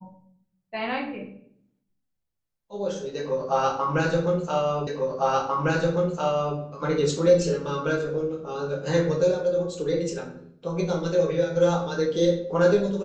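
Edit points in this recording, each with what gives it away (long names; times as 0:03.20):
0:04.87: the same again, the last 1.7 s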